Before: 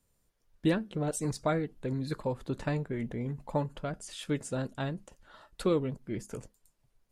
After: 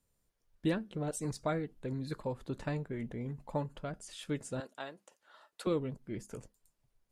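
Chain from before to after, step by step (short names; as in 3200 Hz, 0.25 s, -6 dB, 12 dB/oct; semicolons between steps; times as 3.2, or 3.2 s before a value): 4.6–5.67 HPF 480 Hz 12 dB/oct; gain -4.5 dB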